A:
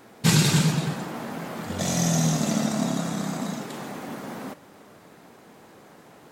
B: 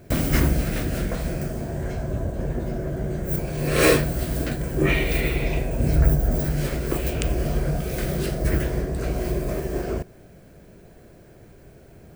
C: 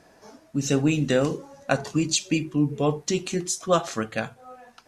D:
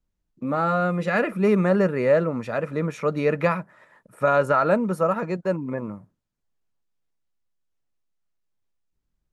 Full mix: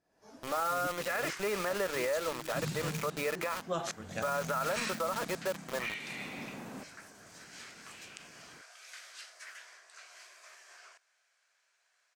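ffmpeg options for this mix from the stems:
ffmpeg -i stem1.wav -i stem2.wav -i stem3.wav -i stem4.wav -filter_complex "[0:a]lowshelf=frequency=100:gain=11.5,adelay=2300,volume=-10.5dB,afade=type=in:start_time=5.93:duration=0.37:silence=0.298538[link_01];[1:a]highpass=frequency=1100:width=0.5412,highpass=frequency=1100:width=1.3066,lowpass=frequency=6500:width_type=q:width=1.6,adelay=950,volume=-13dB[link_02];[2:a]aeval=exprs='val(0)*pow(10,-28*if(lt(mod(-2.3*n/s,1),2*abs(-2.3)/1000),1-mod(-2.3*n/s,1)/(2*abs(-2.3)/1000),(mod(-2.3*n/s,1)-2*abs(-2.3)/1000)/(1-2*abs(-2.3)/1000))/20)':channel_layout=same,volume=0.5dB[link_03];[3:a]highpass=620,acompressor=threshold=-27dB:ratio=2,acrusher=bits=5:mix=0:aa=0.000001,volume=-1dB,asplit=2[link_04][link_05];[link_05]apad=whole_len=215011[link_06];[link_03][link_06]sidechaincompress=threshold=-45dB:ratio=8:attack=16:release=145[link_07];[link_01][link_02][link_07][link_04]amix=inputs=4:normalize=0,alimiter=limit=-24dB:level=0:latency=1:release=44" out.wav

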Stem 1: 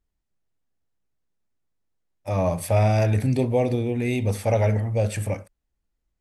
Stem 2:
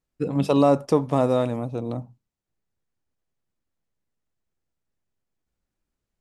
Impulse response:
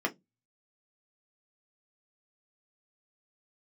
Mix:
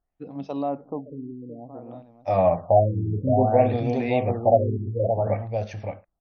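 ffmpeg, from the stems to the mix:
-filter_complex "[0:a]volume=-3.5dB,asplit=3[link_01][link_02][link_03];[link_02]volume=-14.5dB[link_04];[link_03]volume=-4dB[link_05];[1:a]equalizer=frequency=270:width=2.5:gain=6,volume=-16dB,asplit=2[link_06][link_07];[link_07]volume=-13.5dB[link_08];[2:a]atrim=start_sample=2205[link_09];[link_04][link_09]afir=irnorm=-1:irlink=0[link_10];[link_05][link_08]amix=inputs=2:normalize=0,aecho=0:1:569:1[link_11];[link_01][link_06][link_10][link_11]amix=inputs=4:normalize=0,equalizer=frequency=720:width=2.5:gain=11,afftfilt=real='re*lt(b*sr/1024,420*pow(6500/420,0.5+0.5*sin(2*PI*0.57*pts/sr)))':imag='im*lt(b*sr/1024,420*pow(6500/420,0.5+0.5*sin(2*PI*0.57*pts/sr)))':win_size=1024:overlap=0.75"

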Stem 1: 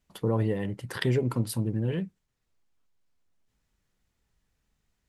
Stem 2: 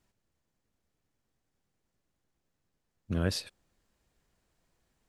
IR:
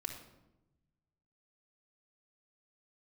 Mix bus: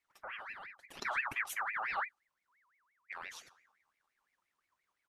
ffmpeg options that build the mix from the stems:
-filter_complex "[0:a]aecho=1:1:5:0.75,volume=-6.5dB,afade=type=in:start_time=0.79:duration=0.64:silence=0.281838,afade=type=out:start_time=2.33:duration=0.65:silence=0.266073[link_01];[1:a]acompressor=threshold=-32dB:ratio=6,volume=-9dB,asplit=2[link_02][link_03];[link_03]volume=-8.5dB[link_04];[2:a]atrim=start_sample=2205[link_05];[link_04][link_05]afir=irnorm=-1:irlink=0[link_06];[link_01][link_02][link_06]amix=inputs=3:normalize=0,aeval=exprs='val(0)*sin(2*PI*1600*n/s+1600*0.4/5.8*sin(2*PI*5.8*n/s))':channel_layout=same"

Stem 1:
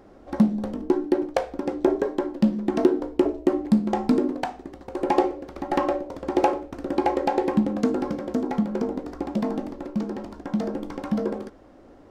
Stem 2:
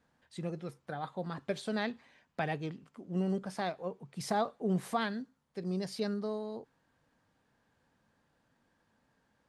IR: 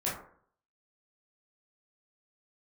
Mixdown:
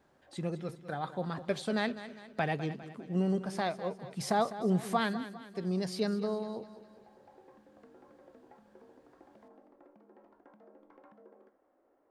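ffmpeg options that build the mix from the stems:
-filter_complex "[0:a]acompressor=threshold=-32dB:ratio=5,acrossover=split=320 2300:gain=0.0891 1 0.0891[link_01][link_02][link_03];[link_01][link_02][link_03]amix=inputs=3:normalize=0,volume=-19dB,asplit=2[link_04][link_05];[link_05]volume=-17.5dB[link_06];[1:a]volume=2.5dB,asplit=3[link_07][link_08][link_09];[link_08]volume=-13.5dB[link_10];[link_09]apad=whole_len=533610[link_11];[link_04][link_11]sidechaincompress=threshold=-54dB:ratio=8:attack=16:release=740[link_12];[2:a]atrim=start_sample=2205[link_13];[link_06][link_13]afir=irnorm=-1:irlink=0[link_14];[link_10]aecho=0:1:202|404|606|808|1010|1212|1414:1|0.47|0.221|0.104|0.0488|0.0229|0.0108[link_15];[link_12][link_07][link_14][link_15]amix=inputs=4:normalize=0"

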